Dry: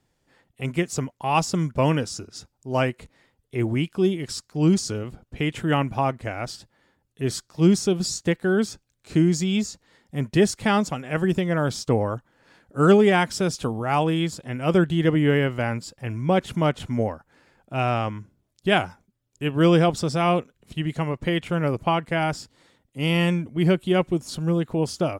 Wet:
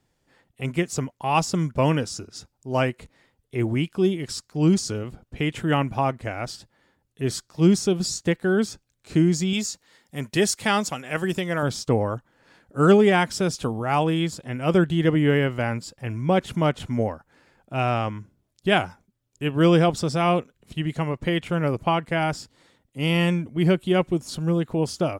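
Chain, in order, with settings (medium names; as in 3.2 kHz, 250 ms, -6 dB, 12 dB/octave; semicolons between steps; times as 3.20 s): 9.53–11.63 s: tilt EQ +2 dB/octave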